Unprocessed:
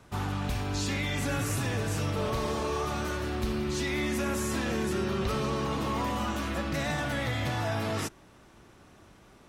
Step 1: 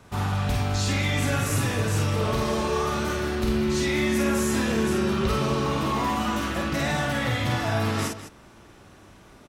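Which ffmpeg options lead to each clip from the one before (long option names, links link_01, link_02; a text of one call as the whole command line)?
ffmpeg -i in.wav -af "aecho=1:1:49.56|204.1:0.708|0.251,volume=3.5dB" out.wav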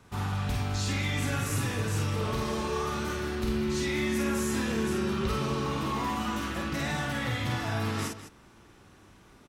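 ffmpeg -i in.wav -af "equalizer=frequency=620:width_type=o:width=0.39:gain=-5.5,volume=-5dB" out.wav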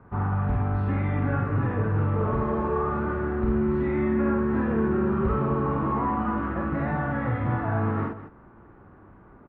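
ffmpeg -i in.wav -af "lowpass=frequency=1500:width=0.5412,lowpass=frequency=1500:width=1.3066,volume=5.5dB" out.wav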